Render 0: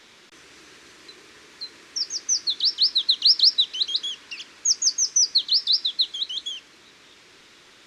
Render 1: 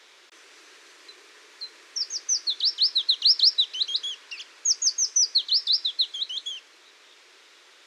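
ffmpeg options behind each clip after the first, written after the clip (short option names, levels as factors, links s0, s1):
-af "highpass=f=380:w=0.5412,highpass=f=380:w=1.3066,volume=0.794"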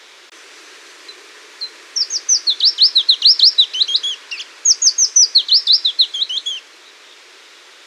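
-af "alimiter=level_in=3.98:limit=0.891:release=50:level=0:latency=1,volume=0.891"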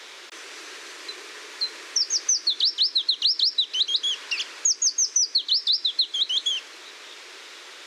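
-filter_complex "[0:a]acrossover=split=330[s0][s1];[s1]acompressor=threshold=0.1:ratio=6[s2];[s0][s2]amix=inputs=2:normalize=0"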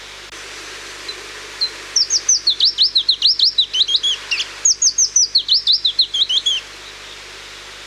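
-af "aeval=exprs='val(0)+0.00141*(sin(2*PI*50*n/s)+sin(2*PI*2*50*n/s)/2+sin(2*PI*3*50*n/s)/3+sin(2*PI*4*50*n/s)/4+sin(2*PI*5*50*n/s)/5)':c=same,volume=2.51"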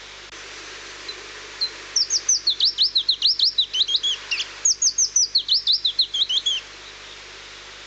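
-af "volume=0.562" -ar 16000 -c:a pcm_mulaw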